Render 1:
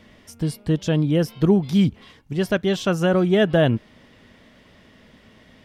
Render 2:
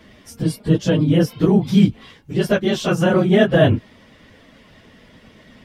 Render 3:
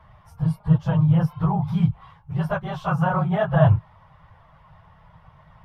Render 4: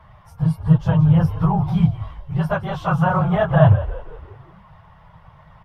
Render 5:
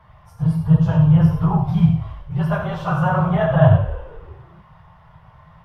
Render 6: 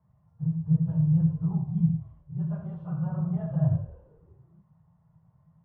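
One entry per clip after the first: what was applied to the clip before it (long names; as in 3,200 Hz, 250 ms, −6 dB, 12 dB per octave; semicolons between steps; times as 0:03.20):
random phases in long frames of 50 ms; level +3.5 dB
drawn EQ curve 160 Hz 0 dB, 230 Hz −29 dB, 430 Hz −21 dB, 870 Hz +4 dB, 1,200 Hz +1 dB, 1,800 Hz −13 dB, 7,400 Hz −26 dB, 11,000 Hz −19 dB; level +2 dB
echo with shifted repeats 172 ms, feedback 50%, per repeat −59 Hz, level −14 dB; level +3.5 dB
reverb whose tail is shaped and stops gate 130 ms flat, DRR 1.5 dB; level −3 dB
resonant band-pass 180 Hz, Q 1.5; level −8.5 dB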